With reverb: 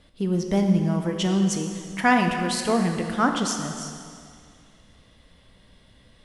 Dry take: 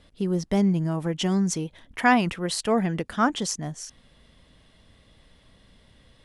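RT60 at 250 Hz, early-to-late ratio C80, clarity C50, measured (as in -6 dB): 2.1 s, 6.0 dB, 5.0 dB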